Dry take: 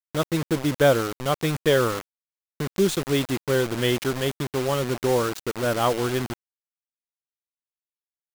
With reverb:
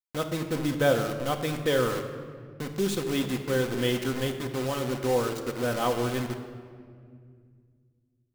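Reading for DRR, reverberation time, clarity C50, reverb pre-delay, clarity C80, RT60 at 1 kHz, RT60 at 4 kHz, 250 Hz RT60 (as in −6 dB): 4.0 dB, 2.1 s, 8.0 dB, 4 ms, 9.5 dB, 1.9 s, 1.3 s, 3.1 s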